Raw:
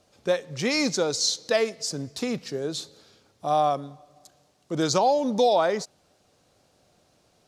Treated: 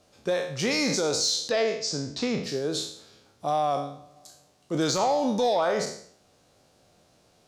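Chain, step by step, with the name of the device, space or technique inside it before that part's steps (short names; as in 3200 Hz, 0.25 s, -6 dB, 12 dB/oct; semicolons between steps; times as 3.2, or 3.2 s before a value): spectral trails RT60 0.56 s; soft clipper into limiter (soft clip -10 dBFS, distortion -25 dB; limiter -17 dBFS, peak gain reduction 6 dB); 1.49–2.44 LPF 6400 Hz 24 dB/oct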